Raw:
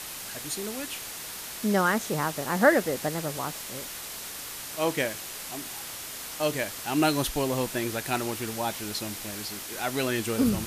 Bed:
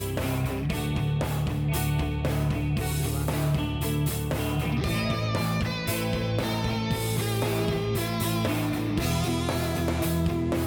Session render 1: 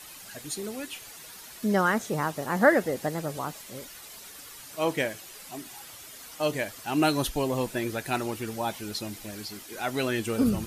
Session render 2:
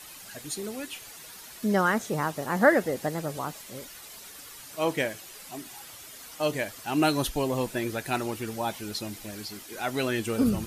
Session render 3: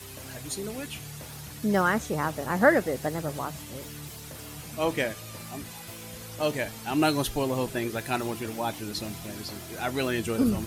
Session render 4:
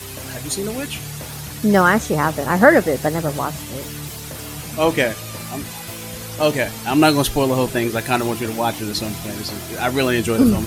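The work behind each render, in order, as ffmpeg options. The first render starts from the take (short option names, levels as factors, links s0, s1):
-af "afftdn=nr=10:nf=-39"
-af anull
-filter_complex "[1:a]volume=0.15[s0];[0:a][s0]amix=inputs=2:normalize=0"
-af "volume=3.16,alimiter=limit=0.891:level=0:latency=1"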